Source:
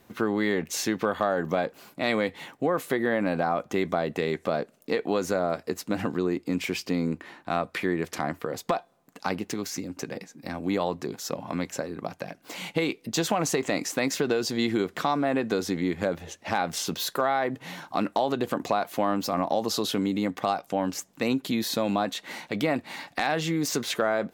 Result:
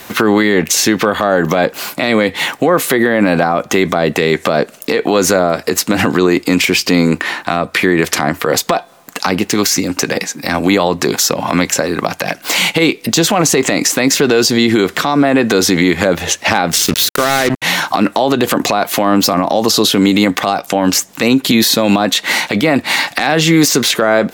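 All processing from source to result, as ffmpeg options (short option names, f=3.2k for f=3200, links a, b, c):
-filter_complex "[0:a]asettb=1/sr,asplit=3[a][b][c];[a]atrim=end=16.764[d];[b]atrim=start=16.76:end=17.62,asetpts=PTS-STARTPTS,afade=t=in:d=0.004:c=qsin,afade=t=out:st=0.856:d=0.004:c=qsin,acrusher=bits=4:mix=0:aa=0.5,equalizer=f=860:w=1.2:g=-7[e];[c]atrim=start=17.616[f];[d][e]acrossfade=d=0.004:c1=hsin:c2=qsin[g];[g][f]acrossfade=d=0.004:c1=qsin:c2=hsin,tiltshelf=f=660:g=-6.5,acrossover=split=440[h][i];[i]acompressor=threshold=-33dB:ratio=5[j];[h][j]amix=inputs=2:normalize=0,alimiter=level_in=23.5dB:limit=-1dB:release=50:level=0:latency=1,volume=-1dB"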